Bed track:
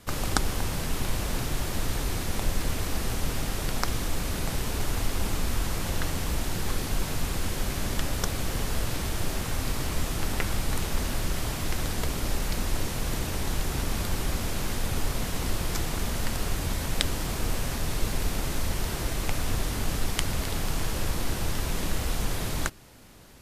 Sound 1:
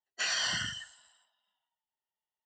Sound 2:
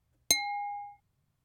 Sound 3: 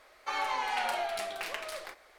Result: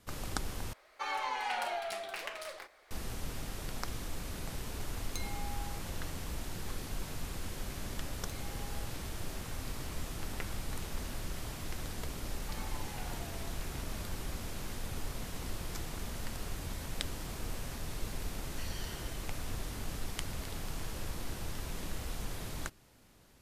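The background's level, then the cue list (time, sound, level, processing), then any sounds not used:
bed track -11 dB
0.73 s: replace with 3 -3.5 dB
4.85 s: add 2 -2.5 dB + compression 2.5:1, threshold -46 dBFS
7.99 s: add 2 -13 dB + compression, threshold -39 dBFS
12.21 s: add 3 -17.5 dB
18.38 s: add 1 -17.5 dB + Chebyshev high-pass 1.9 kHz

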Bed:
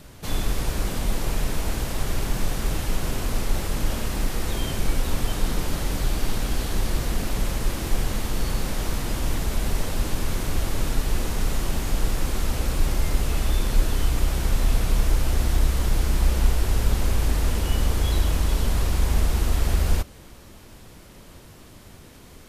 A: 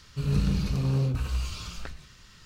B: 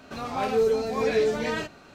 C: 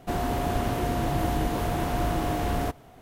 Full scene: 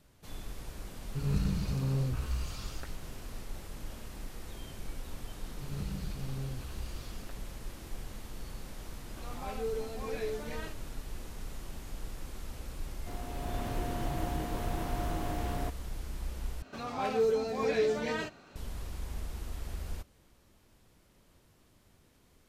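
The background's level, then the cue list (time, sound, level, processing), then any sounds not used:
bed -18 dB
0.98 s: add A -5.5 dB + bands offset in time lows, highs 40 ms, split 3.1 kHz
5.44 s: add A -13.5 dB
9.06 s: add B -13.5 dB
12.99 s: add C -17.5 dB + level rider gain up to 8.5 dB
16.62 s: replace with B -5.5 dB

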